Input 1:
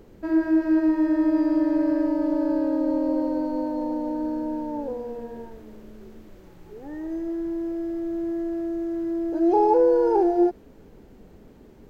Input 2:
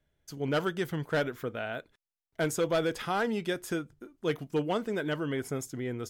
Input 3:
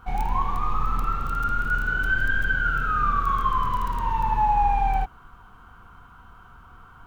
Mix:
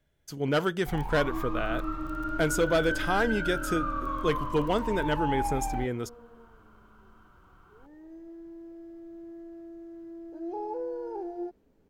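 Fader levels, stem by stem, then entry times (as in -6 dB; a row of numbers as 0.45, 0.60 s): -16.5, +3.0, -10.0 dB; 1.00, 0.00, 0.80 s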